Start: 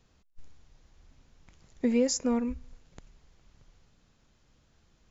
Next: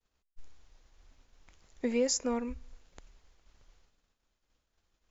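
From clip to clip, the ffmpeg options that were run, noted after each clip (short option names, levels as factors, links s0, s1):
-af "agate=range=0.0224:threshold=0.00158:ratio=3:detection=peak,equalizer=f=140:t=o:w=1.8:g=-11.5"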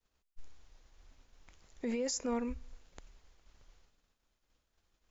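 -af "alimiter=level_in=1.5:limit=0.0631:level=0:latency=1:release=11,volume=0.668"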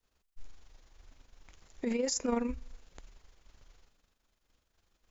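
-af "tremolo=f=24:d=0.519,volume=1.88"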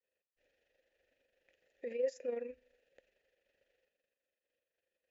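-filter_complex "[0:a]asplit=3[s0][s1][s2];[s0]bandpass=f=530:t=q:w=8,volume=1[s3];[s1]bandpass=f=1840:t=q:w=8,volume=0.501[s4];[s2]bandpass=f=2480:t=q:w=8,volume=0.355[s5];[s3][s4][s5]amix=inputs=3:normalize=0,volume=1.26"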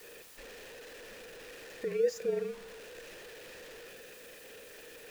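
-af "aeval=exprs='val(0)+0.5*0.00376*sgn(val(0))':c=same,afreqshift=-46,volume=1.88"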